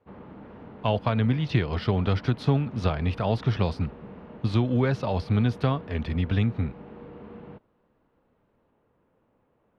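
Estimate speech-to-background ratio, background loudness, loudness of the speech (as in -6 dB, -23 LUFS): 18.0 dB, -44.5 LUFS, -26.5 LUFS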